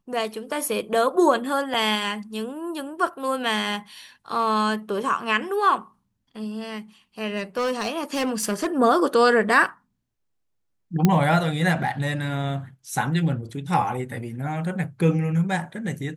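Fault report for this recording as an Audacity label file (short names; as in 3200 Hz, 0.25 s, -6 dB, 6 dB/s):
1.740000	1.740000	gap 3.8 ms
7.370000	8.670000	clipped -20 dBFS
11.050000	11.050000	pop -5 dBFS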